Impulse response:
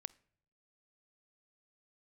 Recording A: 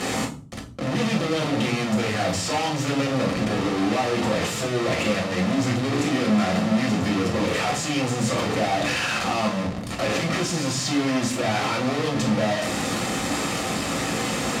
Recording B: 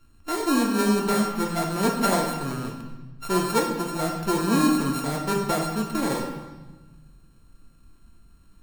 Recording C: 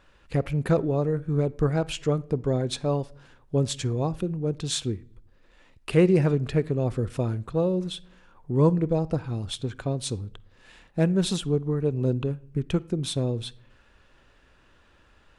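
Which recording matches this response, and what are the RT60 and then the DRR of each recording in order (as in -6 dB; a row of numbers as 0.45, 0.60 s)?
C; 0.45, 1.2, 0.70 s; -0.5, 0.0, 20.5 dB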